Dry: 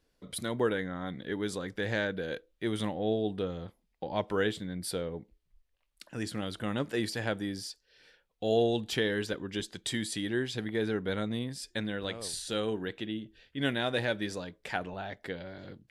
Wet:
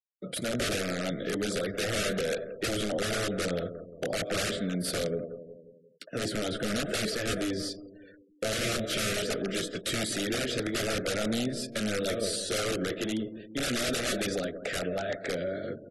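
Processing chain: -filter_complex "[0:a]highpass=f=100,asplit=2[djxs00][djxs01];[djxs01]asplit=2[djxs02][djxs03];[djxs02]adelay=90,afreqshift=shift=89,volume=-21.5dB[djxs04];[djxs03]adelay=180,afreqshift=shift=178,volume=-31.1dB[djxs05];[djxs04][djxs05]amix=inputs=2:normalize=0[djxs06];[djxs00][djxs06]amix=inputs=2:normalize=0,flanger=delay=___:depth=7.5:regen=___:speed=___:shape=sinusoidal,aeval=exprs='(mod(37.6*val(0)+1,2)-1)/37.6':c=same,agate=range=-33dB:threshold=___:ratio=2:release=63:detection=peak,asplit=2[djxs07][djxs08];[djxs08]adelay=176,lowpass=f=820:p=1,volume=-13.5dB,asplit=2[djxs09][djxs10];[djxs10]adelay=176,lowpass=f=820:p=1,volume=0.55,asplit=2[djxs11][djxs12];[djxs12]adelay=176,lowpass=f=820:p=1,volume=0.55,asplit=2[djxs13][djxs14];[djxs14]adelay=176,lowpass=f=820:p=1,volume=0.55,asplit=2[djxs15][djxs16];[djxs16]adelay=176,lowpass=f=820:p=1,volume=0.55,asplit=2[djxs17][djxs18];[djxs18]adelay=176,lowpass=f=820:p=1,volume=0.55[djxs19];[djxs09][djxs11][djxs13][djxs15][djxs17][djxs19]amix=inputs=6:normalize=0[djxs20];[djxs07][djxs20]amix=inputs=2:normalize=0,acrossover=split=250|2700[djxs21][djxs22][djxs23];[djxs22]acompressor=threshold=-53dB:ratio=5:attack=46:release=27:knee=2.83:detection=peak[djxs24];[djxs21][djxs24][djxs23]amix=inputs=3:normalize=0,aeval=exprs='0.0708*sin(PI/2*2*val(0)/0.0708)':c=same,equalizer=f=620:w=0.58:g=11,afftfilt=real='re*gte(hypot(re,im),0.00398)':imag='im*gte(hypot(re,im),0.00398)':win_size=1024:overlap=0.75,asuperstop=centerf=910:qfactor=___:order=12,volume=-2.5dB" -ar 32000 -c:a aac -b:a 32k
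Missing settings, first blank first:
4.6, -37, 0.43, -60dB, 1.7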